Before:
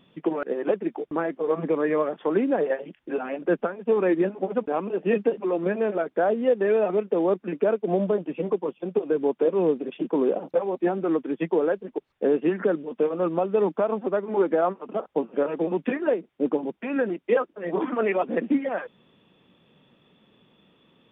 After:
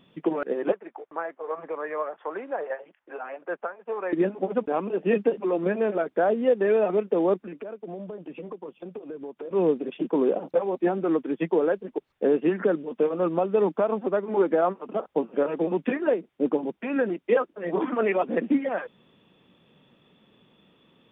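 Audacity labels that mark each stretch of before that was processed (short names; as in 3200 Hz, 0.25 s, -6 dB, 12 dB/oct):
0.720000	4.130000	three-band isolator lows -23 dB, under 570 Hz, highs -15 dB, over 2000 Hz
7.370000	9.510000	compressor 5:1, threshold -35 dBFS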